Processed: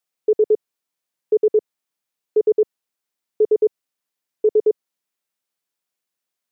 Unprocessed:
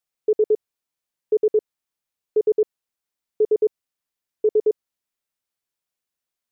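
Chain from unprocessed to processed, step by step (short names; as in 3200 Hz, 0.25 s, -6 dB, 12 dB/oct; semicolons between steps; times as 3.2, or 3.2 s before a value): HPF 140 Hz; gain +2.5 dB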